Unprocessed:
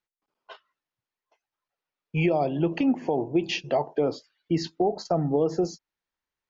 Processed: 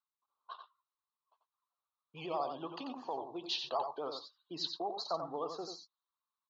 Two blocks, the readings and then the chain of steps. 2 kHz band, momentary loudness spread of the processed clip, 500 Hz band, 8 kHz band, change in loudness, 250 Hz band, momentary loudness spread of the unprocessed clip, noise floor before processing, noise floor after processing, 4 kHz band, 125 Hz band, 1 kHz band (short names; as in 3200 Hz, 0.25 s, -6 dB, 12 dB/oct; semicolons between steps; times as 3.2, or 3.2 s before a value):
-17.0 dB, 14 LU, -15.0 dB, n/a, -13.0 dB, -20.5 dB, 6 LU, under -85 dBFS, under -85 dBFS, -2.5 dB, -26.5 dB, -7.0 dB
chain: on a send: echo 90 ms -6.5 dB; on the sum: low-pass opened by the level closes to 2600 Hz, open at -22.5 dBFS; double band-pass 2100 Hz, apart 1.8 oct; vibrato 12 Hz 74 cents; gain +5.5 dB